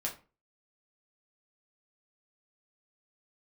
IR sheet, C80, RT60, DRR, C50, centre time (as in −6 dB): 17.0 dB, 0.35 s, −2.0 dB, 11.0 dB, 18 ms